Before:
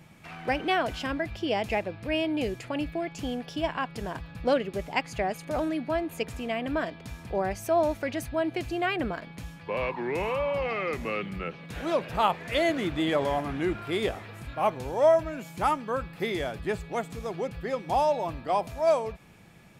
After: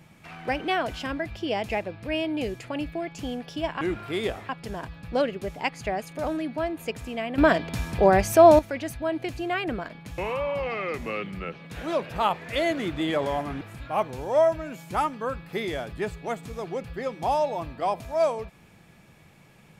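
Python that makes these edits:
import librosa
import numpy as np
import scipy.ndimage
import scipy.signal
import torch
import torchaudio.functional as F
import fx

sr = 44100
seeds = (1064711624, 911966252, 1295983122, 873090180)

y = fx.edit(x, sr, fx.clip_gain(start_s=6.7, length_s=1.21, db=10.5),
    fx.cut(start_s=9.5, length_s=0.67),
    fx.move(start_s=13.6, length_s=0.68, to_s=3.81), tone=tone)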